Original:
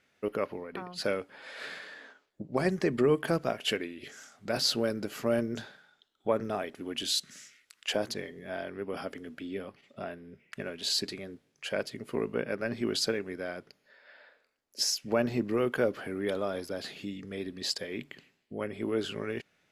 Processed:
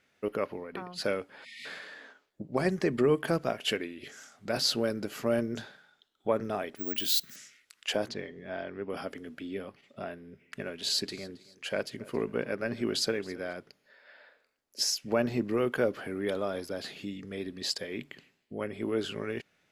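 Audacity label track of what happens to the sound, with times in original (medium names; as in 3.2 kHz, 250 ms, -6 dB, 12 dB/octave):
1.450000	1.650000	spectral selection erased 270–1800 Hz
6.760000	7.360000	careless resampling rate divided by 2×, down none, up zero stuff
8.080000	8.900000	distance through air 100 m
10.140000	13.530000	feedback delay 272 ms, feedback 37%, level -21 dB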